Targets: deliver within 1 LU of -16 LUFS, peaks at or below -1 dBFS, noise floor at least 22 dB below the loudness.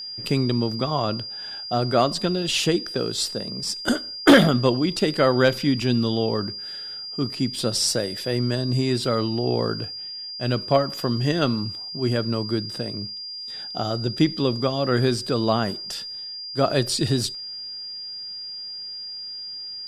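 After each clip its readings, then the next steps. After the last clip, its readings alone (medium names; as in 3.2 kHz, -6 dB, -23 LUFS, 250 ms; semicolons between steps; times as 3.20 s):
steady tone 4.8 kHz; tone level -32 dBFS; loudness -23.5 LUFS; peak level -4.0 dBFS; loudness target -16.0 LUFS
-> band-stop 4.8 kHz, Q 30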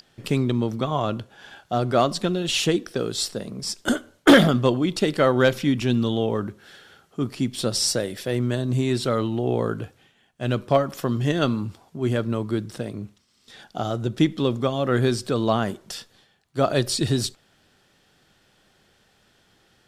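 steady tone not found; loudness -23.5 LUFS; peak level -4.5 dBFS; loudness target -16.0 LUFS
-> trim +7.5 dB; peak limiter -1 dBFS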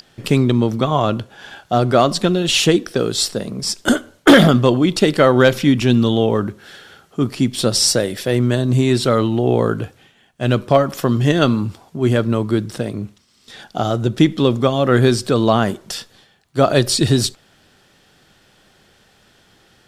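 loudness -16.5 LUFS; peak level -1.0 dBFS; noise floor -55 dBFS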